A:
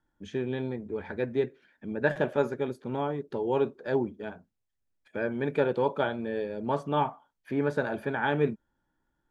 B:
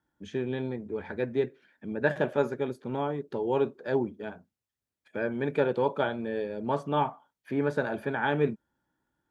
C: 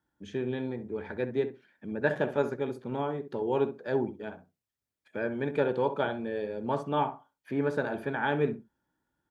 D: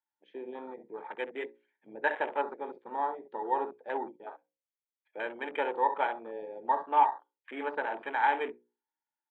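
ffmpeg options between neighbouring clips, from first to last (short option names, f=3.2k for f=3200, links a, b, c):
-af "highpass=71"
-filter_complex "[0:a]asplit=2[a][b];[b]adelay=65,lowpass=f=1.4k:p=1,volume=-10dB,asplit=2[c][d];[d]adelay=65,lowpass=f=1.4k:p=1,volume=0.17[e];[a][c][e]amix=inputs=3:normalize=0,volume=-1.5dB"
-af "highpass=f=370:w=0.5412,highpass=f=370:w=1.3066,equalizer=f=410:t=q:w=4:g=-7,equalizer=f=600:t=q:w=4:g=-5,equalizer=f=890:t=q:w=4:g=9,equalizer=f=1.4k:t=q:w=4:g=-3,equalizer=f=2.1k:t=q:w=4:g=9,equalizer=f=3.1k:t=q:w=4:g=4,lowpass=f=3.7k:w=0.5412,lowpass=f=3.7k:w=1.3066,afwtdn=0.0112,bandreject=f=60:t=h:w=6,bandreject=f=120:t=h:w=6,bandreject=f=180:t=h:w=6,bandreject=f=240:t=h:w=6,bandreject=f=300:t=h:w=6,bandreject=f=360:t=h:w=6,bandreject=f=420:t=h:w=6,bandreject=f=480:t=h:w=6,bandreject=f=540:t=h:w=6"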